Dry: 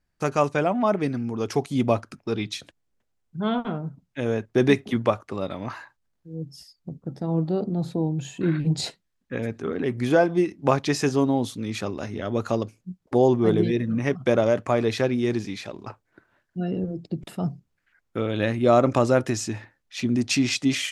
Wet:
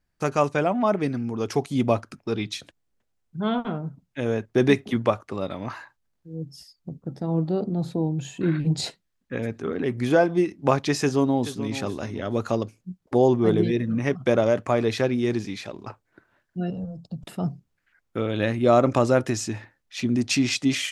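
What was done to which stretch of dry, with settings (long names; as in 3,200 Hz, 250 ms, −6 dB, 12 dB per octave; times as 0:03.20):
0:11.00–0:11.68: delay throw 430 ms, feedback 20%, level −13 dB
0:16.70–0:17.25: phaser with its sweep stopped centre 860 Hz, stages 4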